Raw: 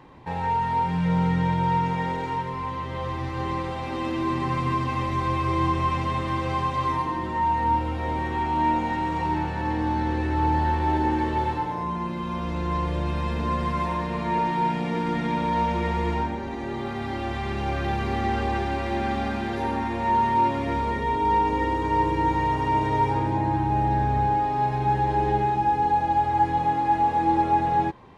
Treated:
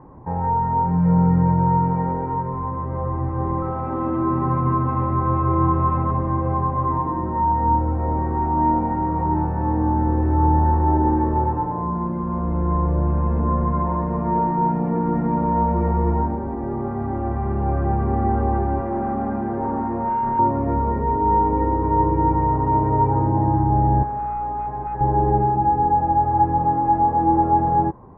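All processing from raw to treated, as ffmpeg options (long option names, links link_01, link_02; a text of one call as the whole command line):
ffmpeg -i in.wav -filter_complex "[0:a]asettb=1/sr,asplit=3[link_01][link_02][link_03];[link_01]atrim=end=3.624[link_04];[link_02]atrim=start=3.62:end=6.11,asetpts=PTS-STARTPTS,afade=type=in:duration=0.004:curve=qsin,afade=type=out:start_time=2.486:duration=0.004:curve=qsin,highpass=63,aemphasis=mode=production:type=75kf,aeval=exprs='val(0)+0.0251*sin(2*PI*1300*n/s)':channel_layout=same[link_05];[link_03]atrim=start=6.106[link_06];[link_04][link_05]acrossfade=duration=0.004:curve1=hsin:curve2=qsin[link_07];[link_07][link_06]acrossfade=duration=0.004:curve1=qsin:curve2=hsin,asettb=1/sr,asplit=3[link_08][link_09][link_10];[link_08]atrim=end=18.804[link_11];[link_09]atrim=start=18.8:end=20.39,asetpts=PTS-STARTPTS,afade=type=in:duration=0.004:curve=qsin,afade=type=out:start_time=1.586:duration=0.004:curve=qsin,highpass=110,lowpass=5500,asoftclip=type=hard:threshold=-23dB[link_12];[link_10]atrim=start=20.386[link_13];[link_11][link_12]acrossfade=duration=0.004:curve1=hsin:curve2=qsin[link_14];[link_14][link_13]acrossfade=duration=0.004:curve1=qsin:curve2=hsin,asettb=1/sr,asplit=3[link_15][link_16][link_17];[link_15]atrim=end=24.034[link_18];[link_16]atrim=start=24.03:end=25.01,asetpts=PTS-STARTPTS,afade=type=in:duration=0.004:curve=qsin,afade=type=out:start_time=0.976:duration=0.004:curve=qsin,highpass=frequency=960:poles=1,aeval=exprs='0.0531*(abs(mod(val(0)/0.0531+3,4)-2)-1)':channel_layout=same,aeval=exprs='val(0)+0.00708*(sin(2*PI*60*n/s)+sin(2*PI*2*60*n/s)/2+sin(2*PI*3*60*n/s)/3+sin(2*PI*4*60*n/s)/4+sin(2*PI*5*60*n/s)/5)':channel_layout=same[link_19];[link_17]atrim=start=25.006[link_20];[link_18][link_19]acrossfade=duration=0.004:curve1=hsin:curve2=qsin[link_21];[link_21][link_20]acrossfade=duration=0.004:curve1=qsin:curve2=hsin,lowpass=frequency=1200:width=0.5412,lowpass=frequency=1200:width=1.3066,lowshelf=frequency=200:gain=5,volume=3.5dB" out.wav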